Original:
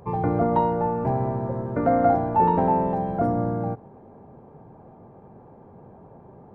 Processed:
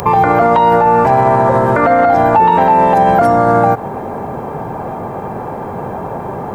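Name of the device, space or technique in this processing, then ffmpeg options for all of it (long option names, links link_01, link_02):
mastering chain: -filter_complex "[0:a]equalizer=frequency=3100:width_type=o:width=2.3:gain=-4,acrossover=split=530|2100[link_01][link_02][link_03];[link_01]acompressor=threshold=-33dB:ratio=4[link_04];[link_02]acompressor=threshold=-31dB:ratio=4[link_05];[link_03]acompressor=threshold=-52dB:ratio=4[link_06];[link_04][link_05][link_06]amix=inputs=3:normalize=0,acompressor=threshold=-32dB:ratio=3,tiltshelf=frequency=900:gain=-9.5,alimiter=level_in=31dB:limit=-1dB:release=50:level=0:latency=1,volume=-1dB"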